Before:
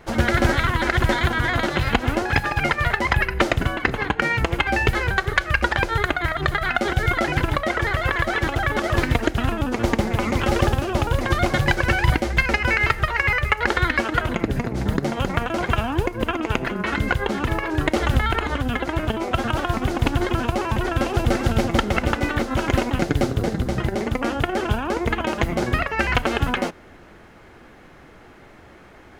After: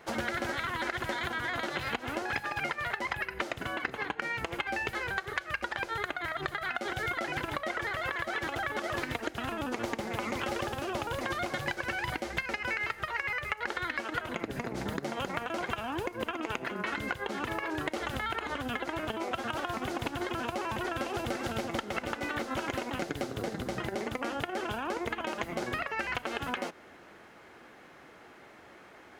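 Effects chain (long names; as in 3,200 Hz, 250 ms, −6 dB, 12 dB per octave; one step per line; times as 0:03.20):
high-pass filter 370 Hz 6 dB per octave
downward compressor, threshold −26 dBFS, peak gain reduction 12 dB
level −4 dB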